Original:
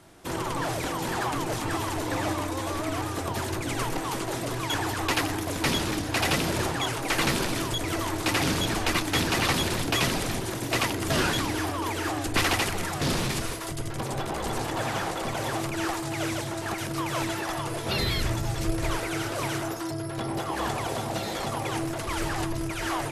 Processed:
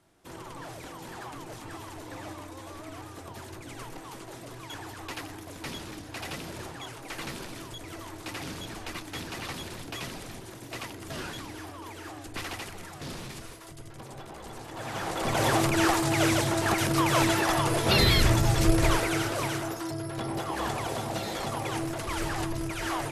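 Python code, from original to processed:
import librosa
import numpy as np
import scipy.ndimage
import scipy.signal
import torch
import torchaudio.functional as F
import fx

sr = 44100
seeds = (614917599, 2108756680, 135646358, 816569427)

y = fx.gain(x, sr, db=fx.line((14.66, -12.5), (14.92, -6.0), (15.43, 5.5), (18.79, 5.5), (19.6, -2.0)))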